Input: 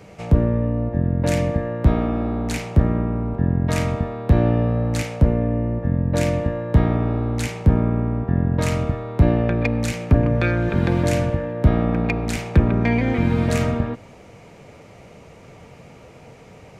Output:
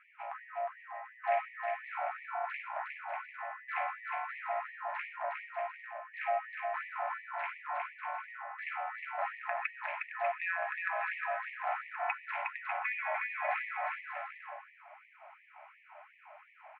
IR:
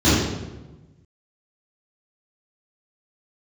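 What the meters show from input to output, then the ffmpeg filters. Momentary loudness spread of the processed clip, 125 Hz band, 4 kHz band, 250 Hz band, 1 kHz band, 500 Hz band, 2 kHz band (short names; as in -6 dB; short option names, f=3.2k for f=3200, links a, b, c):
21 LU, under -40 dB, -20.0 dB, under -40 dB, -4.0 dB, -16.5 dB, -4.5 dB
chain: -af "highpass=f=300:t=q:w=0.5412,highpass=f=300:t=q:w=1.307,lowpass=f=2.2k:t=q:w=0.5176,lowpass=f=2.2k:t=q:w=0.7071,lowpass=f=2.2k:t=q:w=1.932,afreqshift=110,aecho=1:1:360|594|746.1|845|909.2:0.631|0.398|0.251|0.158|0.1,afftfilt=real='re*gte(b*sr/1024,560*pow(1800/560,0.5+0.5*sin(2*PI*2.8*pts/sr)))':imag='im*gte(b*sr/1024,560*pow(1800/560,0.5+0.5*sin(2*PI*2.8*pts/sr)))':win_size=1024:overlap=0.75,volume=-5dB"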